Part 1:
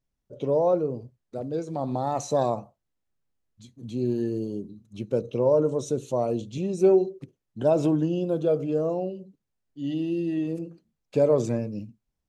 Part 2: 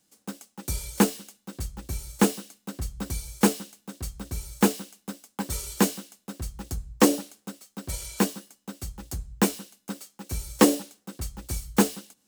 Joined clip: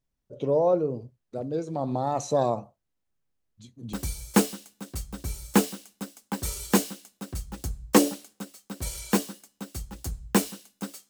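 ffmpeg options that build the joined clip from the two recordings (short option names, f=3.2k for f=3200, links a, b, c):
-filter_complex "[0:a]apad=whole_dur=11.09,atrim=end=11.09,atrim=end=3.932[a];[1:a]atrim=start=2.998:end=10.16[b];[a][b]acrossfade=d=0.004:c1=hsin:c2=hsin"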